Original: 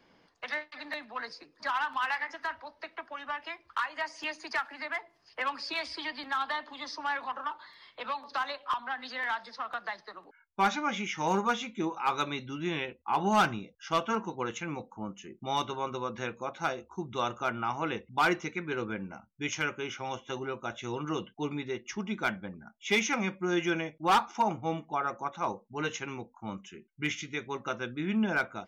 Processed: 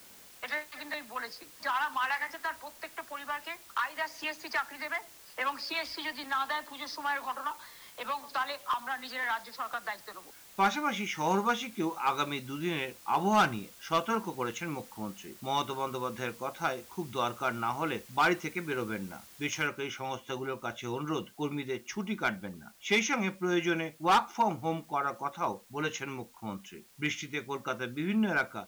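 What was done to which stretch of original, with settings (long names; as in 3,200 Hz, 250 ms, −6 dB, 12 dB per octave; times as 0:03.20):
0:19.67: noise floor change −54 dB −61 dB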